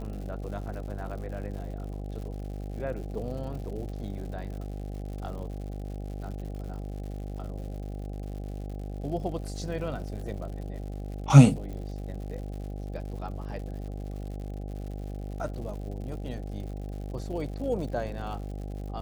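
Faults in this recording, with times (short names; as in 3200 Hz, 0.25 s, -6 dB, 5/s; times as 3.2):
buzz 50 Hz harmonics 16 -36 dBFS
crackle 140/s -40 dBFS
11.73 pop -29 dBFS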